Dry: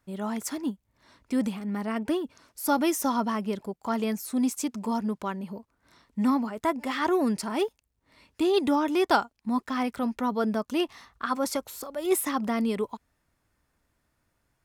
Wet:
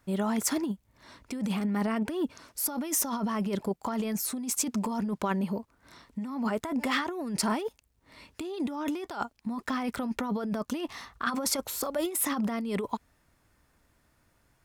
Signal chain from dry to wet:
compressor whose output falls as the input rises −32 dBFS, ratio −1
level +1.5 dB

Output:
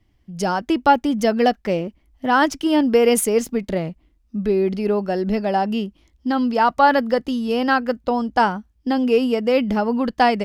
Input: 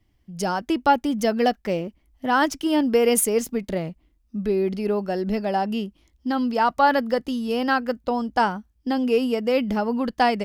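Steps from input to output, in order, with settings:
high-shelf EQ 8,600 Hz −7.5 dB
level +3.5 dB

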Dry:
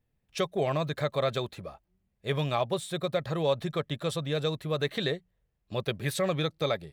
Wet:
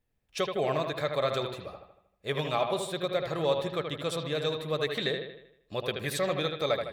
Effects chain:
parametric band 130 Hz −6.5 dB 1.8 octaves
on a send: bucket-brigade delay 78 ms, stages 2,048, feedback 49%, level −6 dB

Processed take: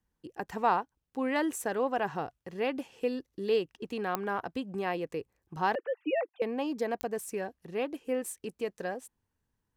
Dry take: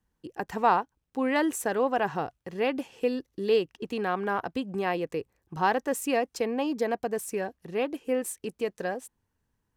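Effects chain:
0:05.75–0:06.42: three sine waves on the formant tracks
digital clicks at 0:04.15/0:07.01, −11 dBFS
level −4 dB

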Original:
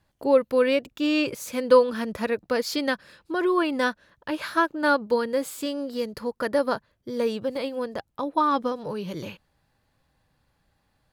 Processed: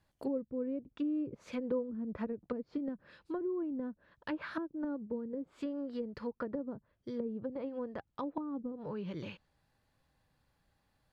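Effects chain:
treble cut that deepens with the level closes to 320 Hz, closed at −22 dBFS
dynamic equaliser 640 Hz, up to −5 dB, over −40 dBFS, Q 0.88
level −6 dB

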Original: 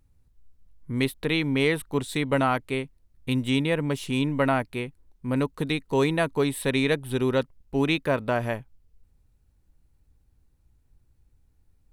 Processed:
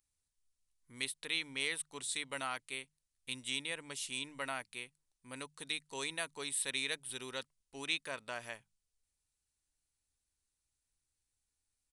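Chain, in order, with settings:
downsampling to 22,050 Hz
first-order pre-emphasis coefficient 0.97
mains-hum notches 50/100/150/200 Hz
level +1 dB

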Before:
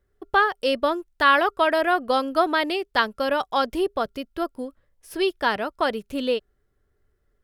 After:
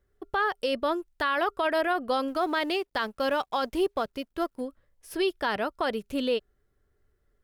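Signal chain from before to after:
0:02.28–0:04.61: mu-law and A-law mismatch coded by A
brickwall limiter −16 dBFS, peak gain reduction 10 dB
level −1.5 dB

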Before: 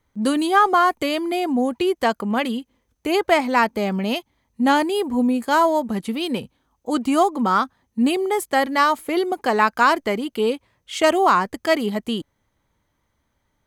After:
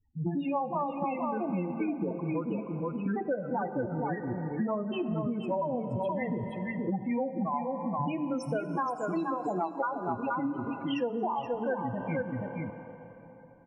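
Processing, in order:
pitch shifter swept by a sawtooth −10 semitones, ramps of 351 ms
spectral peaks only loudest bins 8
parametric band 140 Hz −9.5 dB 0.36 octaves
notch filter 390 Hz, Q 12
hum removal 75.44 Hz, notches 10
on a send: single-tap delay 475 ms −6 dB
on the sum: dense smooth reverb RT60 3.6 s, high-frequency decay 0.8×, DRR 12 dB
downward compressor 10 to 1, threshold −28 dBFS, peak gain reduction 16 dB

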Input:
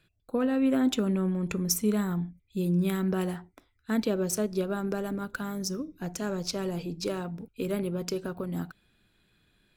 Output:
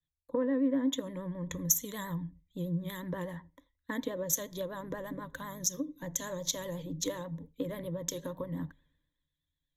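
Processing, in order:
pitch vibrato 8.3 Hz 84 cents
EQ curve with evenly spaced ripples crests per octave 1.1, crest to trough 18 dB
downward compressor 3 to 1, threshold −36 dBFS, peak gain reduction 16.5 dB
feedback echo with a low-pass in the loop 85 ms, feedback 34%, low-pass 1,200 Hz, level −24 dB
multiband upward and downward expander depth 100%

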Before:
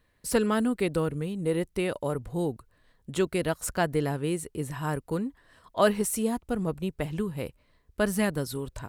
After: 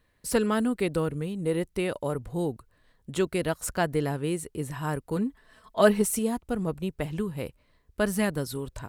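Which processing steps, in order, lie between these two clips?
0:05.16–0:06.19: comb filter 4.6 ms, depth 60%

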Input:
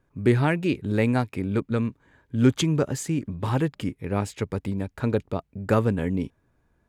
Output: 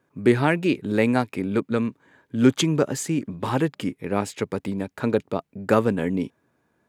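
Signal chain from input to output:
high-pass filter 180 Hz 12 dB per octave
level +3.5 dB

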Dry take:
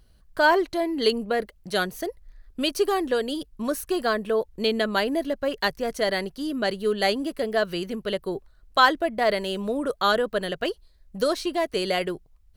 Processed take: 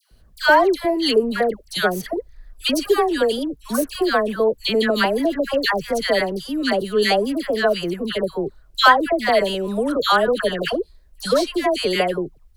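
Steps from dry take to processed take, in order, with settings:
all-pass dispersion lows, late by 115 ms, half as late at 1,200 Hz
level +5.5 dB

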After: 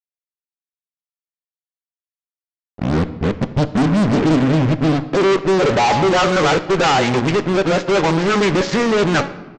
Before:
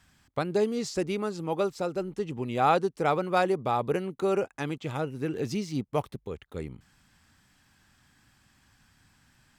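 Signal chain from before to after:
played backwards from end to start
high-shelf EQ 2,200 Hz +7 dB
hum removal 279.2 Hz, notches 3
in parallel at 0 dB: downward compressor, threshold −39 dBFS, peak gain reduction 20.5 dB
on the sum: low-pass filter sweep 250 Hz → 1,900 Hz, 0:05.01–0:06.43
fuzz pedal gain 40 dB, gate −40 dBFS
on a send at −12 dB: convolution reverb RT60 1.2 s, pre-delay 5 ms
on the sum: downsampling to 16,000 Hz
highs frequency-modulated by the lows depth 0.23 ms

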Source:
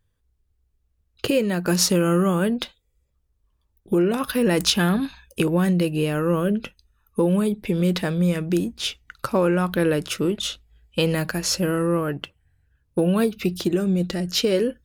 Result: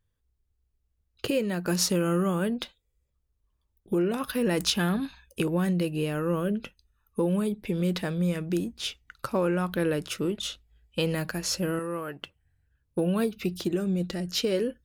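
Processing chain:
0:11.79–0:12.23: low-shelf EQ 370 Hz −11 dB
level −6 dB

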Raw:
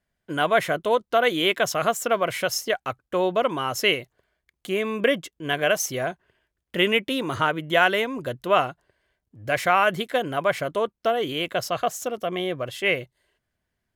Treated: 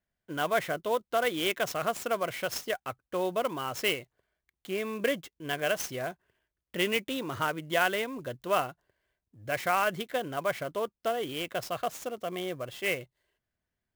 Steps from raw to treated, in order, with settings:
converter with an unsteady clock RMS 0.021 ms
level −7.5 dB

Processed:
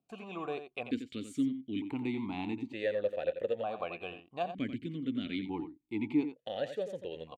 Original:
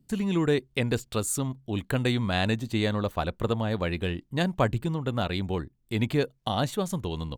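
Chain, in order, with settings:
in parallel at −3 dB: brickwall limiter −18.5 dBFS, peak gain reduction 8 dB
on the sum: single-tap delay 88 ms −10 dB
formant filter that steps through the vowels 1.1 Hz

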